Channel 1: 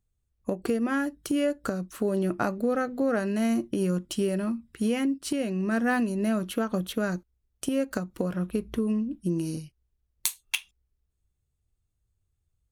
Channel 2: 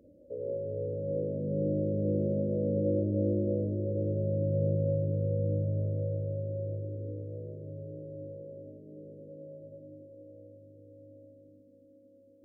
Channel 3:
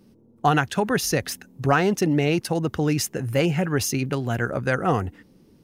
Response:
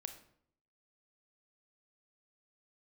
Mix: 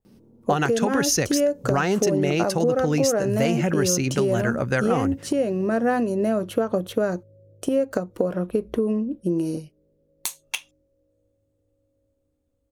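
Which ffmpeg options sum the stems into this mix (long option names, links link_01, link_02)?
-filter_complex "[0:a]equalizer=frequency=530:width=0.7:gain=14,volume=-2dB[link_01];[1:a]adelay=800,volume=-18dB[link_02];[2:a]adelay=50,volume=2dB[link_03];[link_01][link_02][link_03]amix=inputs=3:normalize=0,adynamicequalizer=threshold=0.00562:dfrequency=6300:dqfactor=2.1:tfrequency=6300:tqfactor=2.1:attack=5:release=100:ratio=0.375:range=4:mode=boostabove:tftype=bell,acompressor=threshold=-17dB:ratio=6"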